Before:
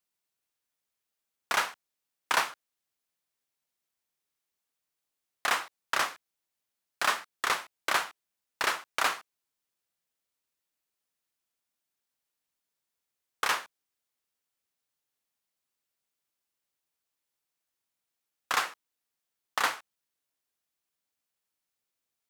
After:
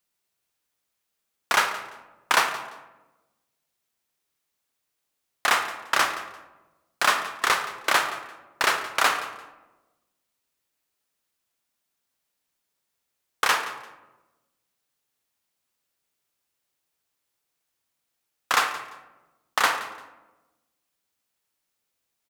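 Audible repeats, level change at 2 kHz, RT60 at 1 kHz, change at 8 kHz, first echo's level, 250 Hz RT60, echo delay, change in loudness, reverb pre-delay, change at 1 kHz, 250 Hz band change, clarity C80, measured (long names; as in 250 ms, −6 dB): 2, +6.5 dB, 1.0 s, +6.0 dB, −17.0 dB, 1.4 s, 172 ms, +6.0 dB, 28 ms, +7.0 dB, +7.0 dB, 10.5 dB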